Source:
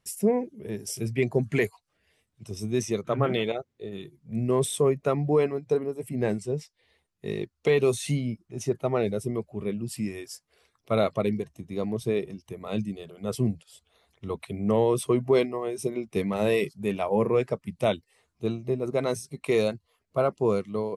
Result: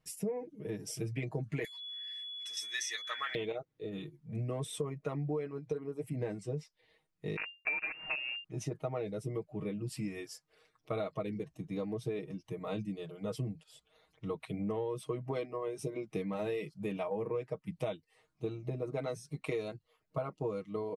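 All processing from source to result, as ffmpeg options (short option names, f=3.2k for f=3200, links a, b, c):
-filter_complex "[0:a]asettb=1/sr,asplit=3[a][b][c];[a]atrim=end=1.644[d];[b]atrim=start=1.64:end=3.35,asetpts=PTS-STARTPTS,afade=t=in:d=0.004:c=qsin,afade=t=out:st=1.706:d=0.004:c=qsin,highshelf=f=3.2k:t=q:w=1.5:g=7.5,aeval=exprs='val(0)+0.0112*sin(2*PI*3400*n/s)':c=same,highpass=f=1.8k:t=q:w=10[e];[c]atrim=start=3.346[f];[d][e]acrossfade=d=0.004:c1=hsin:c2=qsin[g];[g][f]acrossfade=d=0.004:c1=qsin:c2=hsin,asettb=1/sr,asplit=3[h][i][j];[h]atrim=end=7.364[k];[i]atrim=start=7.36:end=8.44,asetpts=PTS-STARTPTS,afade=t=in:d=0.004:c=qsin,afade=t=out:st=1.076:d=0.004:c=qsin,highpass=150,acrusher=bits=5:dc=4:mix=0:aa=0.000001,lowpass=f=2.4k:t=q:w=0.5098,lowpass=f=2.4k:t=q:w=0.6013,lowpass=f=2.4k:t=q:w=0.9,lowpass=f=2.4k:t=q:w=2.563,afreqshift=-2800[l];[j]atrim=start=8.436[m];[k][l]acrossfade=d=0.004:c1=hsin:c2=qsin[n];[n][m]acrossfade=d=0.004:c1=qsin:c2=hsin,highshelf=f=5.8k:g=-9.5,aecho=1:1:6.4:0.93,acompressor=threshold=-29dB:ratio=6,volume=-4.5dB"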